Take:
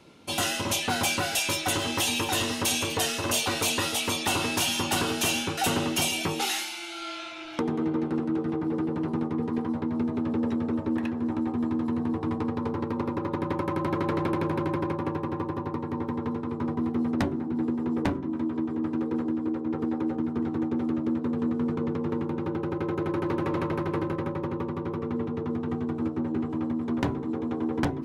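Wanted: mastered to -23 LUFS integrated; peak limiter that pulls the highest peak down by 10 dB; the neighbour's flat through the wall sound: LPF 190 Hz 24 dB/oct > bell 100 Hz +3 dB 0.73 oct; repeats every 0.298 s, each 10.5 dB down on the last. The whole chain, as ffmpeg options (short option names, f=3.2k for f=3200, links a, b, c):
-af "alimiter=limit=-24dB:level=0:latency=1,lowpass=f=190:w=0.5412,lowpass=f=190:w=1.3066,equalizer=f=100:t=o:w=0.73:g=3,aecho=1:1:298|596|894:0.299|0.0896|0.0269,volume=17dB"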